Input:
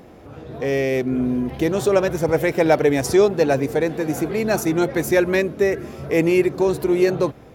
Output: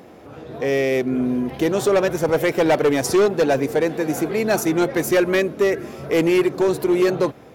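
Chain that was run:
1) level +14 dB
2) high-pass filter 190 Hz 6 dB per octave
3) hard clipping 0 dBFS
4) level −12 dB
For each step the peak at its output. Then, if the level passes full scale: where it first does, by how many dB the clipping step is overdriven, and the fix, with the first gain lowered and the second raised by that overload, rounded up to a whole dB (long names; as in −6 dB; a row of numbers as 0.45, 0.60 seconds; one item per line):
+9.5, +9.5, 0.0, −12.0 dBFS
step 1, 9.5 dB
step 1 +4 dB, step 4 −2 dB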